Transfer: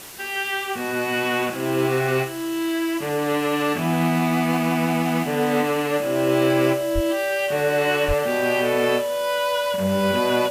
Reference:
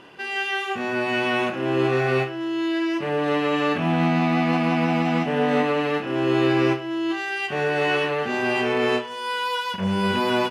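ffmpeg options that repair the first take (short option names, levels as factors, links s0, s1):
-filter_complex "[0:a]adeclick=t=4,bandreject=f=580:w=30,asplit=3[s0][s1][s2];[s0]afade=t=out:st=6.94:d=0.02[s3];[s1]highpass=f=140:w=0.5412,highpass=f=140:w=1.3066,afade=t=in:st=6.94:d=0.02,afade=t=out:st=7.06:d=0.02[s4];[s2]afade=t=in:st=7.06:d=0.02[s5];[s3][s4][s5]amix=inputs=3:normalize=0,asplit=3[s6][s7][s8];[s6]afade=t=out:st=8.07:d=0.02[s9];[s7]highpass=f=140:w=0.5412,highpass=f=140:w=1.3066,afade=t=in:st=8.07:d=0.02,afade=t=out:st=8.19:d=0.02[s10];[s8]afade=t=in:st=8.19:d=0.02[s11];[s9][s10][s11]amix=inputs=3:normalize=0,afwtdn=0.011"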